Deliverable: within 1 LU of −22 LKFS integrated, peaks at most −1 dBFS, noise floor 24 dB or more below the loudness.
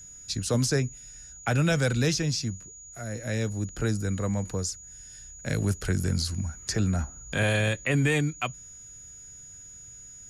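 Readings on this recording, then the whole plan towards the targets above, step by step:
interfering tone 6,800 Hz; level of the tone −44 dBFS; integrated loudness −28.0 LKFS; sample peak −14.0 dBFS; target loudness −22.0 LKFS
→ notch filter 6,800 Hz, Q 30
level +6 dB

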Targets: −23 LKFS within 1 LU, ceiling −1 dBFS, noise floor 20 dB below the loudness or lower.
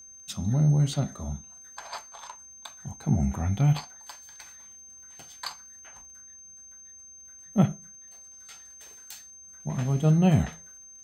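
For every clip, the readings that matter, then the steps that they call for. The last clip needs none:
crackle rate 34 per second; interfering tone 6,300 Hz; level of the tone −46 dBFS; integrated loudness −26.5 LKFS; sample peak −10.0 dBFS; target loudness −23.0 LKFS
→ click removal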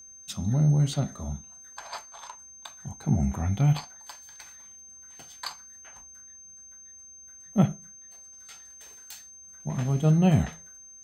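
crackle rate 0.27 per second; interfering tone 6,300 Hz; level of the tone −46 dBFS
→ notch filter 6,300 Hz, Q 30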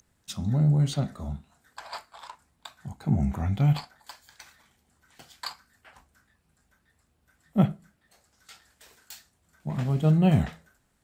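interfering tone none found; integrated loudness −26.5 LKFS; sample peak −10.0 dBFS; target loudness −23.0 LKFS
→ level +3.5 dB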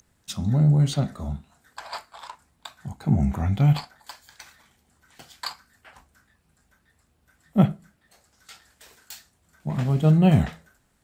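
integrated loudness −23.0 LKFS; sample peak −6.5 dBFS; background noise floor −67 dBFS

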